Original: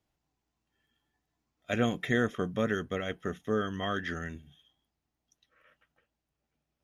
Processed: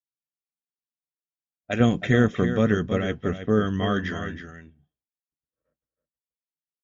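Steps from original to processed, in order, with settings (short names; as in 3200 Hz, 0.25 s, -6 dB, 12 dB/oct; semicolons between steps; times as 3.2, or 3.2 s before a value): expander -56 dBFS; low-pass opened by the level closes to 440 Hz, open at -29.5 dBFS; 1.8–4.09 low shelf 300 Hz +9.5 dB; echo 0.321 s -9.5 dB; gain +4 dB; Vorbis 96 kbps 16000 Hz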